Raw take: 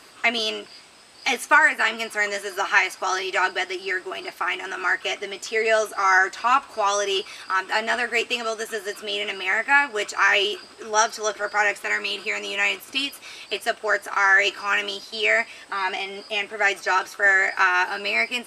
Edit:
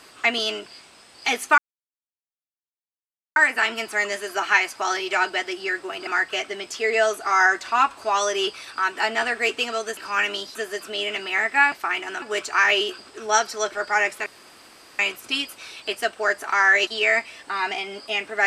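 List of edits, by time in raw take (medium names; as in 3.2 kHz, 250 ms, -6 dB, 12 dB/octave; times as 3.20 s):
1.58 s: insert silence 1.78 s
4.29–4.79 s: move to 9.86 s
11.90–12.63 s: room tone
14.51–15.09 s: move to 8.69 s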